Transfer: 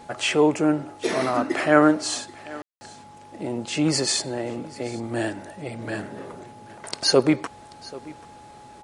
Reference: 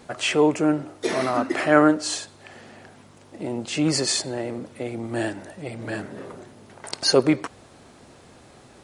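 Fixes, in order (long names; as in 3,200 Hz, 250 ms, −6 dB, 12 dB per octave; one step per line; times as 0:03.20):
notch filter 840 Hz, Q 30
ambience match 0:02.62–0:02.81
echo removal 785 ms −20.5 dB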